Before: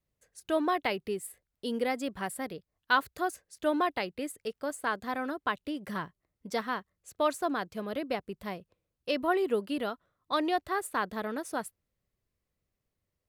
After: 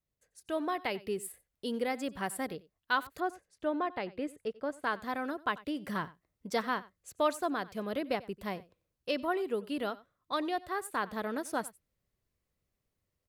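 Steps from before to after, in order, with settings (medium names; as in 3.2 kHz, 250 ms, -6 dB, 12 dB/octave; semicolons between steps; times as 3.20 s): 3.20–4.83 s: low-pass 1.7 kHz 6 dB/octave; delay 92 ms -20.5 dB; gain riding within 3 dB 0.5 s; trim -2.5 dB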